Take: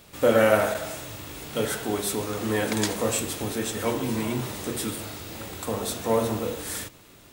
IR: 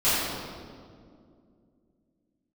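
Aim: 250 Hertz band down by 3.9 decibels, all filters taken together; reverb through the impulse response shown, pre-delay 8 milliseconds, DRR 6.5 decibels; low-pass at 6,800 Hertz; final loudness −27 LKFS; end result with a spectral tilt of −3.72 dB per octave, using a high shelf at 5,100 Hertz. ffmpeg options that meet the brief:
-filter_complex "[0:a]lowpass=6800,equalizer=frequency=250:width_type=o:gain=-5,highshelf=frequency=5100:gain=6.5,asplit=2[link_01][link_02];[1:a]atrim=start_sample=2205,adelay=8[link_03];[link_02][link_03]afir=irnorm=-1:irlink=0,volume=-23dB[link_04];[link_01][link_04]amix=inputs=2:normalize=0"

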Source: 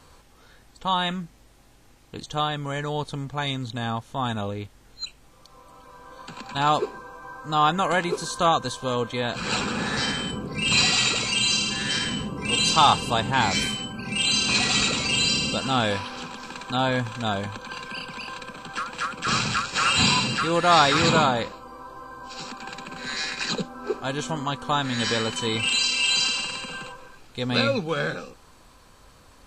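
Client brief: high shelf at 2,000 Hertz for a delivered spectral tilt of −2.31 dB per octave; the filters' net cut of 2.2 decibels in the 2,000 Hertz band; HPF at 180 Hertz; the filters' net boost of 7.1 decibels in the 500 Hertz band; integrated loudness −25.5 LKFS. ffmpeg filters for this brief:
ffmpeg -i in.wav -af "highpass=180,equalizer=frequency=500:width_type=o:gain=8.5,highshelf=frequency=2000:gain=3.5,equalizer=frequency=2000:width_type=o:gain=-6.5,volume=-4dB" out.wav

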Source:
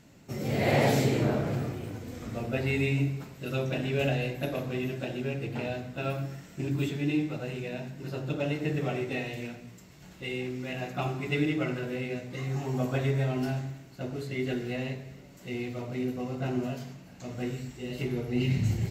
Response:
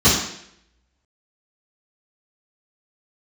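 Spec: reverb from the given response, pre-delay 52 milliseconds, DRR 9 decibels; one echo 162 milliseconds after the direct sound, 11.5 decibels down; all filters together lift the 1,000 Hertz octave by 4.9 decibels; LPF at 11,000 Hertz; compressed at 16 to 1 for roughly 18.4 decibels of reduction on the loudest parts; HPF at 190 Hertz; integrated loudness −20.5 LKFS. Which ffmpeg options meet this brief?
-filter_complex "[0:a]highpass=190,lowpass=11000,equalizer=frequency=1000:width_type=o:gain=7.5,acompressor=threshold=-37dB:ratio=16,aecho=1:1:162:0.266,asplit=2[link_01][link_02];[1:a]atrim=start_sample=2205,adelay=52[link_03];[link_02][link_03]afir=irnorm=-1:irlink=0,volume=-31.5dB[link_04];[link_01][link_04]amix=inputs=2:normalize=0,volume=20dB"

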